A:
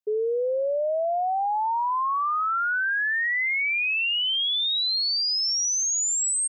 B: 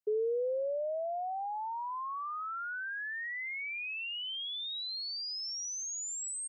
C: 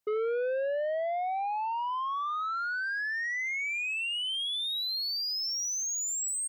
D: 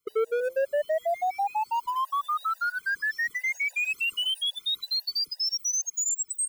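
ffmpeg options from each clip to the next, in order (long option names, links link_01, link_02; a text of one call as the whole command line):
ffmpeg -i in.wav -filter_complex "[0:a]acrossover=split=440[link_01][link_02];[link_02]acompressor=threshold=-35dB:ratio=6[link_03];[link_01][link_03]amix=inputs=2:normalize=0,volume=-3.5dB" out.wav
ffmpeg -i in.wav -af "asoftclip=type=tanh:threshold=-36dB,volume=8dB" out.wav
ffmpeg -i in.wav -filter_complex "[0:a]acrossover=split=610|5000[link_01][link_02][link_03];[link_02]acrusher=bits=5:mode=log:mix=0:aa=0.000001[link_04];[link_01][link_04][link_03]amix=inputs=3:normalize=0,afftfilt=real='re*gt(sin(2*PI*6.1*pts/sr)*(1-2*mod(floor(b*sr/1024/500),2)),0)':imag='im*gt(sin(2*PI*6.1*pts/sr)*(1-2*mod(floor(b*sr/1024/500),2)),0)':win_size=1024:overlap=0.75,volume=6.5dB" out.wav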